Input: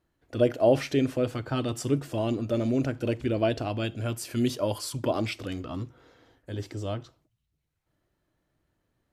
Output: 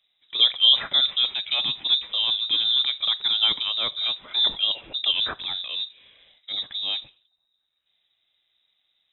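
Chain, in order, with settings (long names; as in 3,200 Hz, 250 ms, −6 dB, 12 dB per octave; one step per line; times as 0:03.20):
voice inversion scrambler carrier 3,800 Hz
level +3.5 dB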